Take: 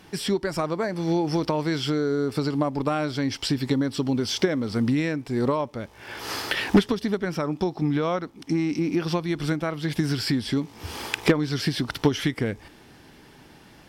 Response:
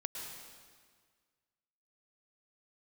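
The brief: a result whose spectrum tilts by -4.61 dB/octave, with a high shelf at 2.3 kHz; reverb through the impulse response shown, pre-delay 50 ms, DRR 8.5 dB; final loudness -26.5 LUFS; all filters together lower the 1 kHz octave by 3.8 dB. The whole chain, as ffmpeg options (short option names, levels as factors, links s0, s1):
-filter_complex "[0:a]equalizer=f=1000:t=o:g=-6.5,highshelf=f=2300:g=7,asplit=2[s0][s1];[1:a]atrim=start_sample=2205,adelay=50[s2];[s1][s2]afir=irnorm=-1:irlink=0,volume=0.376[s3];[s0][s3]amix=inputs=2:normalize=0,volume=0.794"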